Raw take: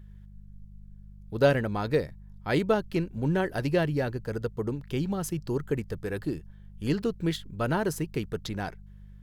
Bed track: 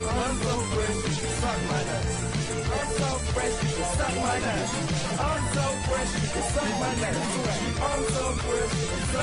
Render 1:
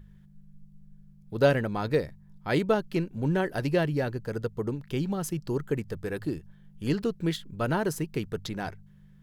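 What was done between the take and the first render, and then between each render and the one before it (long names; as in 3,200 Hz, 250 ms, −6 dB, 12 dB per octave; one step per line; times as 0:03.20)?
hum removal 50 Hz, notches 2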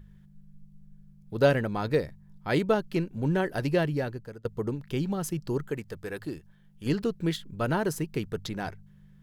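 0:03.73–0:04.45: fade out equal-power, to −24 dB
0:05.69–0:06.86: low-shelf EQ 450 Hz −6.5 dB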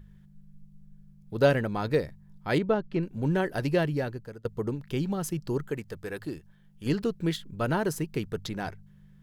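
0:02.58–0:03.03: head-to-tape spacing loss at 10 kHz 21 dB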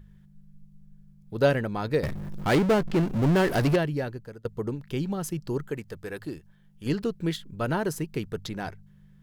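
0:02.03–0:03.76: power curve on the samples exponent 0.5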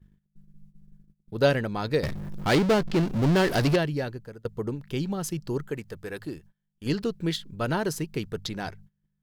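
noise gate −49 dBFS, range −23 dB
dynamic equaliser 4,500 Hz, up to +6 dB, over −49 dBFS, Q 1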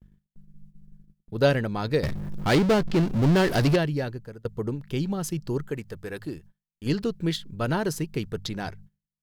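noise gate with hold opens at −51 dBFS
low-shelf EQ 210 Hz +3.5 dB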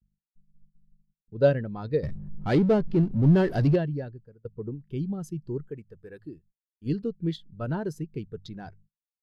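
every bin expanded away from the loudest bin 1.5 to 1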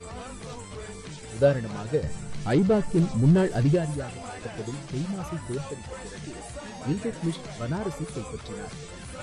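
mix in bed track −12.5 dB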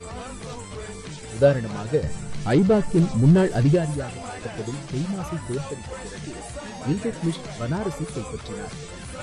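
level +3.5 dB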